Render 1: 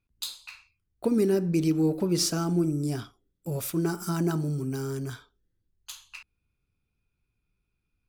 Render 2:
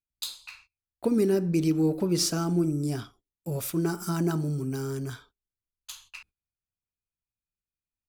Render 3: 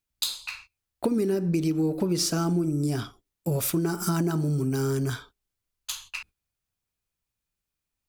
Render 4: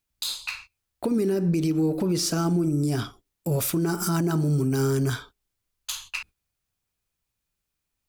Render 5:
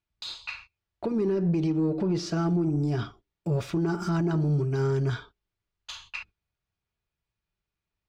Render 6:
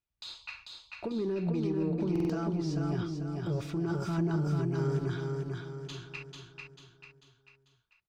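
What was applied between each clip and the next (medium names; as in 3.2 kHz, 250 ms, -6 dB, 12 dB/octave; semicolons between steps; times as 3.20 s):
gate -55 dBFS, range -21 dB
compression, threshold -31 dBFS, peak gain reduction 11 dB; trim +8.5 dB
peak limiter -20 dBFS, peak gain reduction 9 dB; trim +3.5 dB
comb of notches 260 Hz; saturation -17 dBFS, distortion -23 dB; distance through air 170 m
on a send: feedback delay 443 ms, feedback 45%, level -3.5 dB; on the sum: buffer glitch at 2.11 s, samples 2048, times 3; trim -6.5 dB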